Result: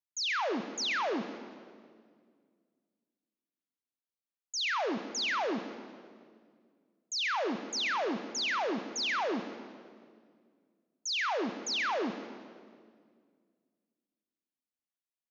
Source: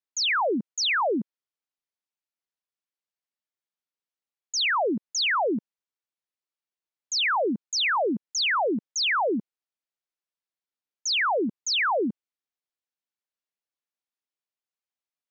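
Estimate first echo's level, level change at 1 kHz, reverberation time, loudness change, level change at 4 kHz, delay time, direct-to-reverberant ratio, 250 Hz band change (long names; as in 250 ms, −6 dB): −16.5 dB, −7.5 dB, 2.0 s, −7.5 dB, −7.5 dB, 133 ms, 7.5 dB, −7.0 dB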